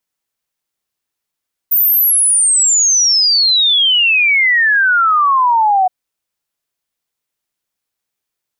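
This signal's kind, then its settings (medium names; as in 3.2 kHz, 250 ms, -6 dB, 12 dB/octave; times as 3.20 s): log sweep 15 kHz -> 730 Hz 4.17 s -8.5 dBFS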